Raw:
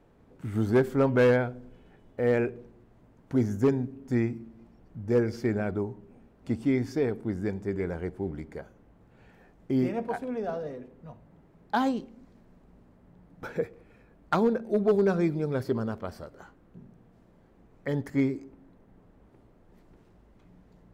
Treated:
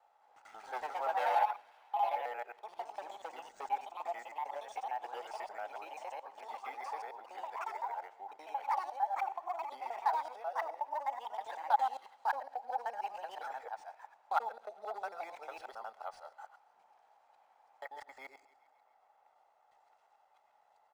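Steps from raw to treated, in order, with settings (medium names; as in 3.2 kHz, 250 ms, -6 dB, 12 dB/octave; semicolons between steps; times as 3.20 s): time reversed locally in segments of 90 ms; comb 1.5 ms, depth 41%; feedback echo behind a high-pass 135 ms, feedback 64%, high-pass 2.2 kHz, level -21 dB; ever faster or slower copies 217 ms, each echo +3 st, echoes 3; in parallel at +1 dB: compression, threshold -33 dBFS, peak gain reduction 17 dB; on the sum: ladder high-pass 780 Hz, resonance 75%; treble shelf 3.6 kHz +7 dB; decimation joined by straight lines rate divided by 3×; trim -4 dB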